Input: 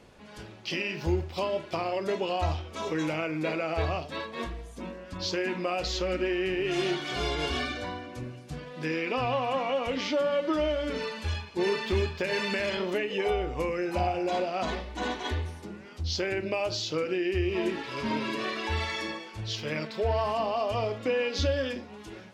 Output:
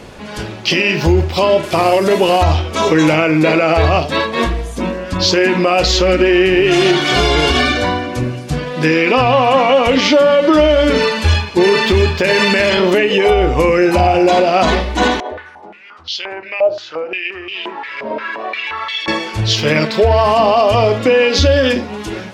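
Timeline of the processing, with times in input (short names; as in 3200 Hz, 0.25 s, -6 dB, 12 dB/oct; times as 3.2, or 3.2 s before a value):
1.63–2.43 delta modulation 64 kbps, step -44.5 dBFS
15.2–19.08 stepped band-pass 5.7 Hz 600–3100 Hz
whole clip: maximiser +21.5 dB; gain -2 dB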